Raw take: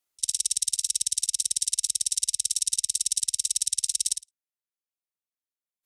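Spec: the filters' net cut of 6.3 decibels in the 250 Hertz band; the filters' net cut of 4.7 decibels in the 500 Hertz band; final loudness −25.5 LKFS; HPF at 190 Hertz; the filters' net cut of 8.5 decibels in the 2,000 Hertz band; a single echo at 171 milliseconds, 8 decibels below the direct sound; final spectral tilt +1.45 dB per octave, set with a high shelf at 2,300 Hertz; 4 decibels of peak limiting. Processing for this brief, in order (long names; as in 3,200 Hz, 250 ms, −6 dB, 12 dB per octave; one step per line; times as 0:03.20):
high-pass filter 190 Hz
parametric band 250 Hz −4.5 dB
parametric band 500 Hz −3.5 dB
parametric band 2,000 Hz −7 dB
high-shelf EQ 2,300 Hz −7 dB
brickwall limiter −17 dBFS
single-tap delay 171 ms −8 dB
level +7 dB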